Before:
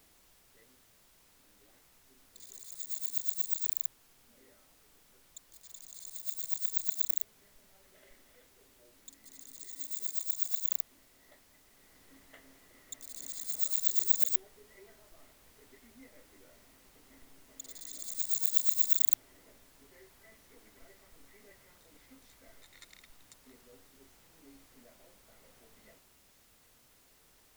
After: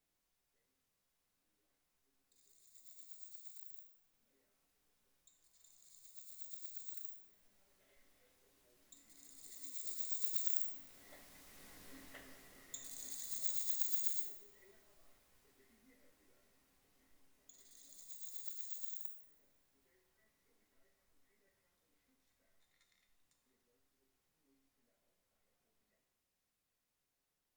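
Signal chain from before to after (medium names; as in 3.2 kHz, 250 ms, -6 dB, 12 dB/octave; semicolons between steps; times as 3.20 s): Doppler pass-by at 11.60 s, 6 m/s, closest 4.2 m; two-slope reverb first 0.67 s, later 3 s, from -28 dB, DRR 2 dB; trim +1.5 dB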